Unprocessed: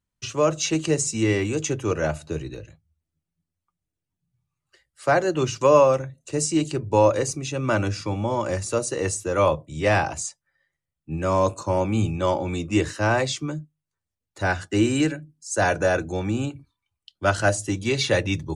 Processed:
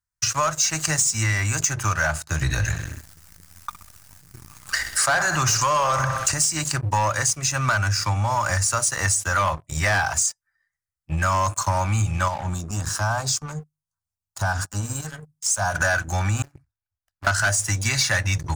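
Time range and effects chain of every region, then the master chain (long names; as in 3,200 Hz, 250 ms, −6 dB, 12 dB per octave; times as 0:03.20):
0:02.42–0:06.34: repeating echo 63 ms, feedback 56%, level −15.5 dB + envelope flattener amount 50%
0:12.28–0:15.75: parametric band 240 Hz +13 dB 1.9 octaves + downward compressor 2 to 1, threshold −30 dBFS + phaser with its sweep stopped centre 860 Hz, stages 4
0:16.42–0:17.27: running median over 41 samples + downward compressor 8 to 1, threshold −36 dBFS
whole clip: drawn EQ curve 100 Hz 0 dB, 440 Hz −26 dB, 650 Hz −4 dB, 1,600 Hz +7 dB, 3,300 Hz −9 dB, 5,000 Hz +6 dB; leveller curve on the samples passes 3; downward compressor, threshold −19 dBFS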